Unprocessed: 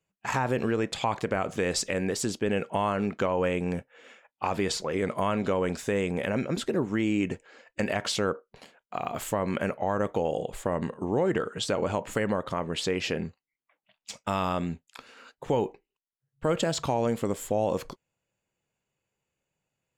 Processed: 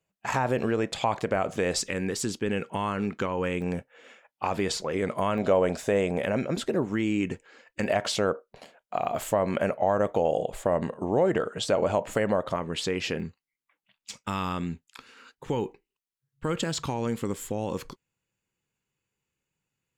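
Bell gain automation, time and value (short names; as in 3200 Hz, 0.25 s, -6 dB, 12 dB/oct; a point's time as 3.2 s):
bell 640 Hz 0.6 oct
+4 dB
from 1.8 s -7.5 dB
from 3.62 s +1 dB
from 5.38 s +11 dB
from 6.18 s +4 dB
from 6.93 s -5 dB
from 7.84 s +7 dB
from 12.56 s -3.5 dB
from 13.2 s -11 dB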